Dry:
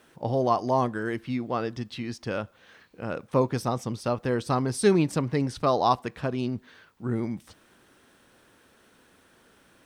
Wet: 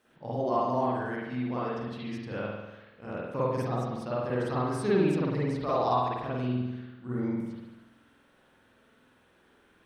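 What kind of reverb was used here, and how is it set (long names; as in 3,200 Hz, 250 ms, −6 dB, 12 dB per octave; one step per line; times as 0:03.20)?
spring reverb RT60 1.1 s, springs 48 ms, chirp 25 ms, DRR −8.5 dB
level −12.5 dB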